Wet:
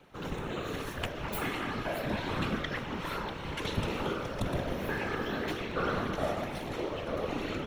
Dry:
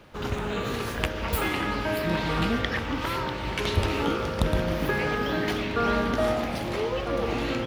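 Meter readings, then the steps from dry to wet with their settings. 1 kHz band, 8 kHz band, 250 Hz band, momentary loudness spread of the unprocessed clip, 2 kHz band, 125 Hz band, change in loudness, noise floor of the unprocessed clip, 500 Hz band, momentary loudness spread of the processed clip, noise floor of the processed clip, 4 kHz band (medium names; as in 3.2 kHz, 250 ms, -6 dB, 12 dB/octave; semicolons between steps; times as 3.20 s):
-6.5 dB, -7.0 dB, -7.0 dB, 4 LU, -7.0 dB, -7.5 dB, -7.0 dB, -32 dBFS, -7.0 dB, 4 LU, -40 dBFS, -7.5 dB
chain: whisper effect; band-stop 4.8 kHz, Q 9.5; trim -7 dB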